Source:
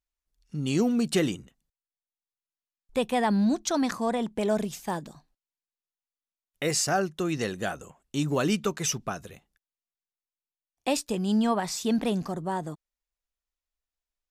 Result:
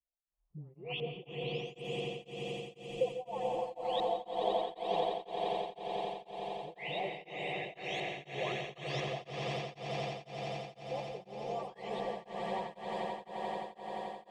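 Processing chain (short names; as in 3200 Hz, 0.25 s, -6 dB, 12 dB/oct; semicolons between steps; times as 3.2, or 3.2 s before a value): spectral delay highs late, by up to 0.67 s; tilt +2 dB/oct; limiter -23.5 dBFS, peak gain reduction 9.5 dB; compressor, threshold -34 dBFS, peak gain reduction 7 dB; LFO low-pass saw up 1 Hz 550–3100 Hz; fixed phaser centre 610 Hz, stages 4; swelling echo 87 ms, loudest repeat 8, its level -6.5 dB; reverb RT60 5.7 s, pre-delay 97 ms, DRR 5 dB; beating tremolo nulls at 2 Hz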